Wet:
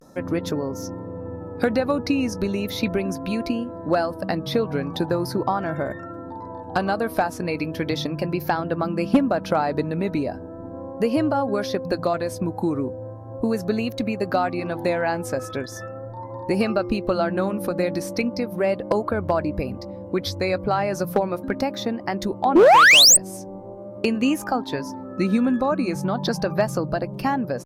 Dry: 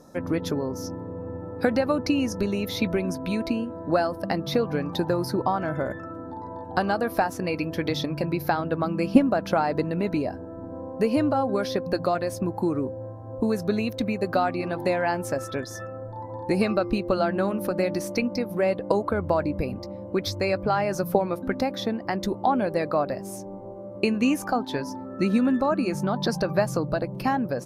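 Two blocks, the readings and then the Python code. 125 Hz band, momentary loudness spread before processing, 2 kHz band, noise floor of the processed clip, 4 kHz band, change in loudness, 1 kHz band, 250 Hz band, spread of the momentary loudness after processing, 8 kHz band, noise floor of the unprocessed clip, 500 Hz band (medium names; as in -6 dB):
+1.5 dB, 11 LU, +8.5 dB, -37 dBFS, +12.5 dB, +4.0 dB, +4.0 dB, +1.5 dB, 12 LU, +17.0 dB, -38 dBFS, +2.5 dB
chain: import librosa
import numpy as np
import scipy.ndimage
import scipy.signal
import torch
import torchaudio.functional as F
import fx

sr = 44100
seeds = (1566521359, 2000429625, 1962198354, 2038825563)

y = fx.vibrato(x, sr, rate_hz=0.38, depth_cents=55.0)
y = fx.spec_paint(y, sr, seeds[0], shape='rise', start_s=22.55, length_s=0.62, low_hz=300.0, high_hz=8900.0, level_db=-10.0)
y = fx.clip_asym(y, sr, top_db=-12.5, bottom_db=-9.5)
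y = F.gain(torch.from_numpy(y), 1.5).numpy()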